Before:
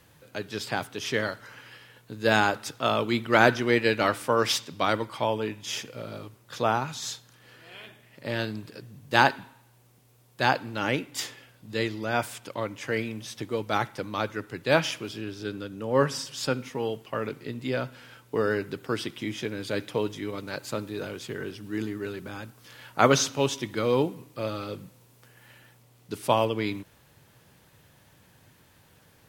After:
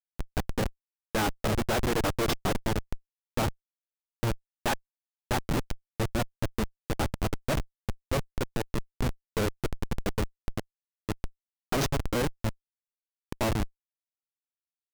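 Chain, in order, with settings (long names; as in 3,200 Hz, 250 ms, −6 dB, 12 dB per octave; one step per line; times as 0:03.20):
phase-vocoder stretch with locked phases 0.51×
comparator with hysteresis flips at −24.5 dBFS
level +4.5 dB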